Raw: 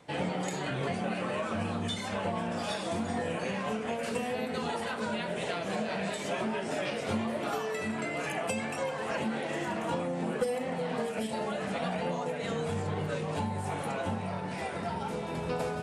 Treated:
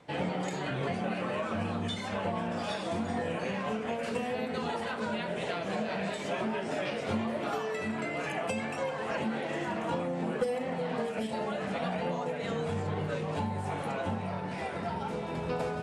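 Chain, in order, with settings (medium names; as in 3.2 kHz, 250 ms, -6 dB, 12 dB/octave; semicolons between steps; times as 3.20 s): treble shelf 8.2 kHz -12 dB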